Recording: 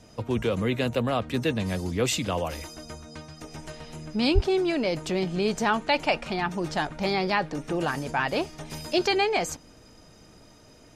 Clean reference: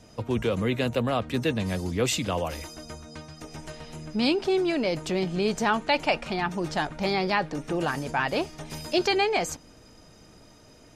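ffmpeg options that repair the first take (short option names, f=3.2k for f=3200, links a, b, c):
-filter_complex "[0:a]asplit=3[a][b][c];[a]afade=t=out:st=4.34:d=0.02[d];[b]highpass=f=140:w=0.5412,highpass=f=140:w=1.3066,afade=t=in:st=4.34:d=0.02,afade=t=out:st=4.46:d=0.02[e];[c]afade=t=in:st=4.46:d=0.02[f];[d][e][f]amix=inputs=3:normalize=0"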